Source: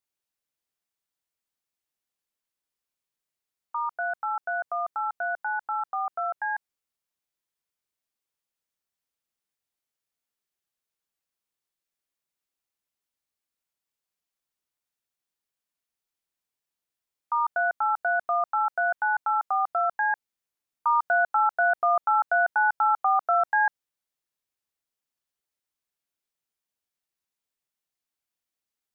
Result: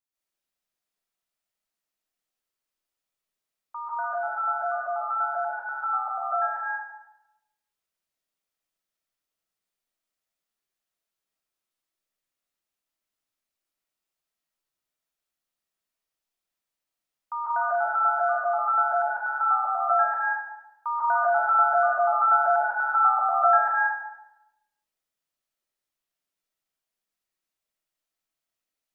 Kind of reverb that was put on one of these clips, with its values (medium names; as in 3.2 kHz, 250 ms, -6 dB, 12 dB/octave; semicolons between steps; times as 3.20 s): algorithmic reverb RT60 0.93 s, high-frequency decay 0.7×, pre-delay 105 ms, DRR -8 dB; trim -6.5 dB